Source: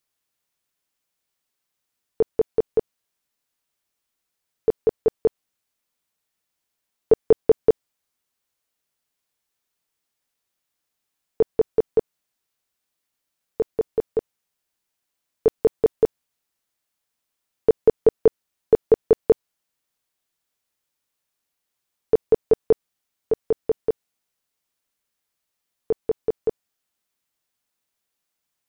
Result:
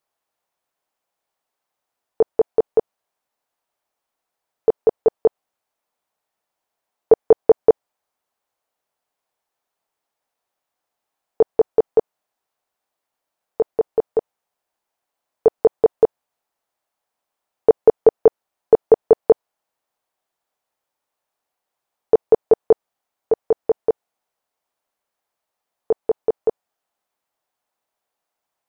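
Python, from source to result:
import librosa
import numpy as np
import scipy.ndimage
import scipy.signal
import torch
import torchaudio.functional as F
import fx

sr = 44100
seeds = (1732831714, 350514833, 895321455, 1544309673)

y = fx.peak_eq(x, sr, hz=750.0, db=15.0, octaves=1.9)
y = y * 10.0 ** (-5.0 / 20.0)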